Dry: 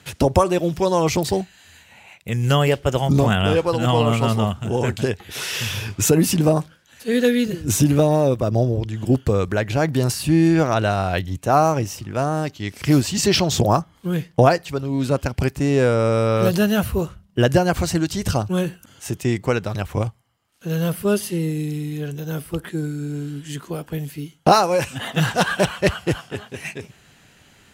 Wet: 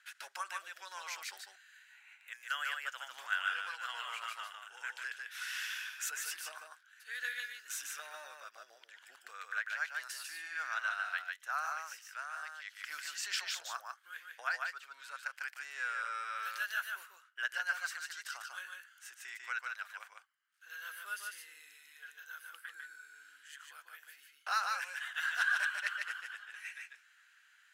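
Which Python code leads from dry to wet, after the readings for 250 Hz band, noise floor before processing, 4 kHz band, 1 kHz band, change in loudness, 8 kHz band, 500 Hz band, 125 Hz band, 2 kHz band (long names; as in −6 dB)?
below −40 dB, −53 dBFS, −15.5 dB, −18.0 dB, −18.5 dB, −16.5 dB, −40.0 dB, below −40 dB, −6.5 dB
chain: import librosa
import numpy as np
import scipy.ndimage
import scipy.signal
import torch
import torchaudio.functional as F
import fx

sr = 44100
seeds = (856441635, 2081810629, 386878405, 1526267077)

p1 = fx.ladder_highpass(x, sr, hz=1400.0, resonance_pct=70)
p2 = p1 + fx.echo_single(p1, sr, ms=148, db=-3.5, dry=0)
y = F.gain(torch.from_numpy(p2), -7.0).numpy()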